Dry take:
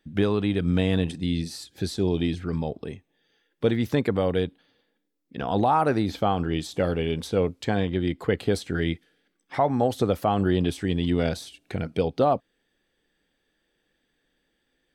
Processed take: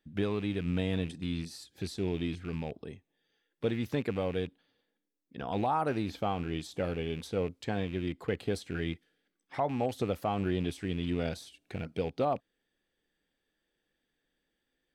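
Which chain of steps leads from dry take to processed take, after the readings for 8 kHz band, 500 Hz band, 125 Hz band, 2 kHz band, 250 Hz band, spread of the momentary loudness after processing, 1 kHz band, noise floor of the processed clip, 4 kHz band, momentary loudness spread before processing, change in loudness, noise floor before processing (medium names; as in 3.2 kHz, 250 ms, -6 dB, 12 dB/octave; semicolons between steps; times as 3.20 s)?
-8.5 dB, -8.5 dB, -8.5 dB, -7.5 dB, -8.5 dB, 10 LU, -8.5 dB, -83 dBFS, -8.0 dB, 10 LU, -8.5 dB, -75 dBFS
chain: rattle on loud lows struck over -28 dBFS, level -29 dBFS; trim -8.5 dB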